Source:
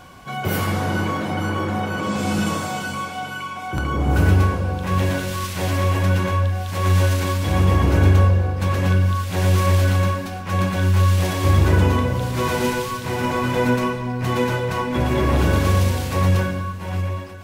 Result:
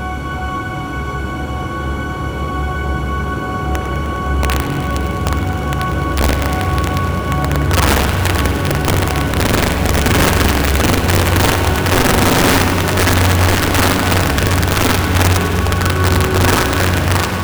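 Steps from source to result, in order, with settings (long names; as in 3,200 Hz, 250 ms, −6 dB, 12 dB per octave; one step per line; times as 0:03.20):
extreme stretch with random phases 25×, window 1.00 s, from 0:03.74
wrap-around overflow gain 10 dB
feedback echo with a high-pass in the loop 102 ms, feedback 84%, high-pass 770 Hz, level −12 dB
spring reverb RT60 3 s, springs 56 ms, chirp 35 ms, DRR 5 dB
level +2 dB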